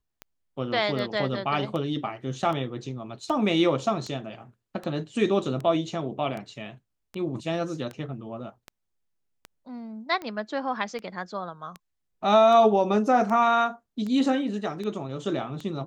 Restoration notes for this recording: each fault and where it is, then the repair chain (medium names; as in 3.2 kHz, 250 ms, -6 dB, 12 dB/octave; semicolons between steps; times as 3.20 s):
tick 78 rpm -22 dBFS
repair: de-click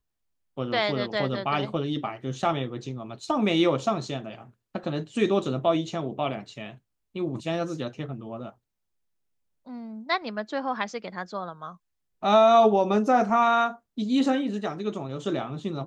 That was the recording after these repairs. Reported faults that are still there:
nothing left